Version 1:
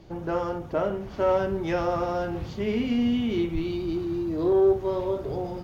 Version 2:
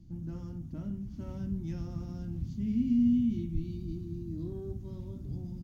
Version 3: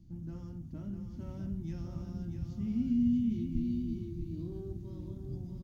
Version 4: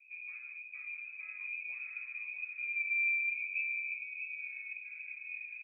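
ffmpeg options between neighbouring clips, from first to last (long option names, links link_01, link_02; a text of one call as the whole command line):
ffmpeg -i in.wav -af "firequalizer=gain_entry='entry(250,0);entry(430,-30);entry(6200,-9)':delay=0.05:min_phase=1,volume=-1dB" out.wav
ffmpeg -i in.wav -af "aecho=1:1:644:0.473,volume=-3dB" out.wav
ffmpeg -i in.wav -af "lowpass=frequency=2200:width_type=q:width=0.5098,lowpass=frequency=2200:width_type=q:width=0.6013,lowpass=frequency=2200:width_type=q:width=0.9,lowpass=frequency=2200:width_type=q:width=2.563,afreqshift=-2600,volume=-4dB" out.wav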